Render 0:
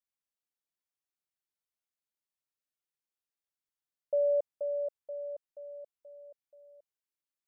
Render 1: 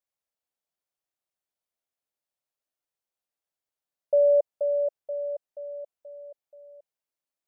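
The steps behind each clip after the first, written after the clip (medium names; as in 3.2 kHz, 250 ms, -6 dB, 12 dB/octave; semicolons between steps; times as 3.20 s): peaking EQ 630 Hz +8.5 dB 1 oct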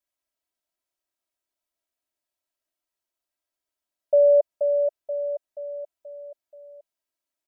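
comb 3.1 ms, depth 92%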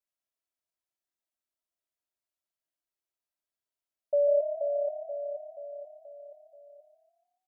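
frequency-shifting echo 142 ms, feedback 48%, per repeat +34 Hz, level -9.5 dB; trim -8 dB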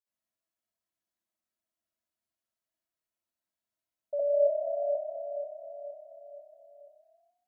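reverberation RT60 0.30 s, pre-delay 60 ms, DRR -7 dB; trim -7 dB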